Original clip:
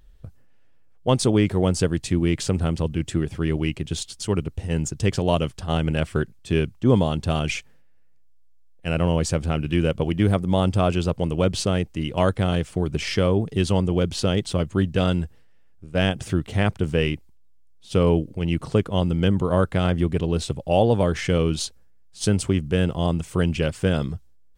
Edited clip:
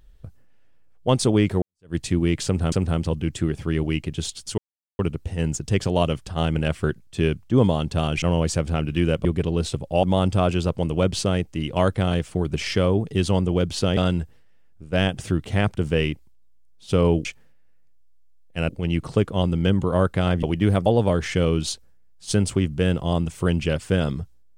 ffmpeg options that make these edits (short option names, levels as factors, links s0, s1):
-filter_complex "[0:a]asplit=12[s0][s1][s2][s3][s4][s5][s6][s7][s8][s9][s10][s11];[s0]atrim=end=1.62,asetpts=PTS-STARTPTS,afade=t=out:st=1.616:d=0.004:c=hsin[s12];[s1]atrim=start=1.62:end=2.722,asetpts=PTS-STARTPTS,afade=t=in:d=0.33:c=exp[s13];[s2]atrim=start=2.448:end=4.31,asetpts=PTS-STARTPTS,afade=t=out:st=1.858:d=0.004:c=hsin,apad=pad_dur=0.41[s14];[s3]atrim=start=4.31:end=7.542,asetpts=PTS-STARTPTS,afade=t=in:d=0.004:c=hsin[s15];[s4]atrim=start=8.978:end=10.012[s16];[s5]atrim=start=20.008:end=20.792[s17];[s6]atrim=start=10.438:end=14.382[s18];[s7]atrim=start=14.988:end=18.272[s19];[s8]atrim=start=7.538:end=8.982[s20];[s9]atrim=start=18.268:end=20.012[s21];[s10]atrim=start=10.008:end=10.442[s22];[s11]atrim=start=20.788[s23];[s12][s13]concat=n=2:v=0:a=1[s24];[s14][s15]concat=n=2:v=0:a=1[s25];[s24][s25]acrossfade=d=0.004:c1=hsin:c2=hsin[s26];[s26][s16]acrossfade=d=0.004:c1=hsin:c2=hsin[s27];[s27][s17]acrossfade=d=0.004:c1=hsin:c2=hsin[s28];[s28][s18]acrossfade=d=0.004:c1=hsin:c2=hsin[s29];[s29][s19]acrossfade=d=0.004:c1=hsin:c2=hsin[s30];[s30][s20]acrossfade=d=0.004:c1=hsin:c2=hsin[s31];[s31][s21]acrossfade=d=0.004:c1=hsin:c2=hsin[s32];[s32][s22]acrossfade=d=0.004:c1=hsin:c2=hsin[s33];[s33][s23]acrossfade=d=0.004:c1=hsin:c2=hsin"